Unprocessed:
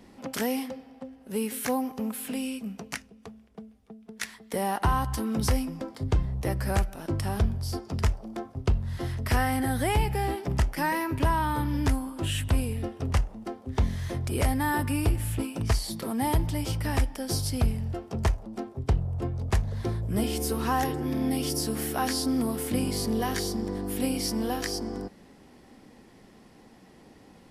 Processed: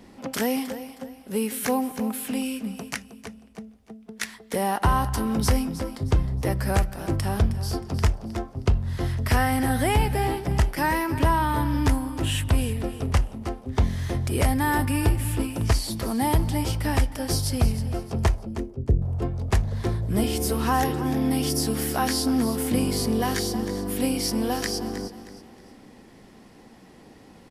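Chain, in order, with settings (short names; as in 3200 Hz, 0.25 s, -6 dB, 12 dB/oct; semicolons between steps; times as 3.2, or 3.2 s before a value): 18.45–19.02 steep low-pass 550 Hz; feedback echo 0.314 s, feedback 33%, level -13 dB; gain +3.5 dB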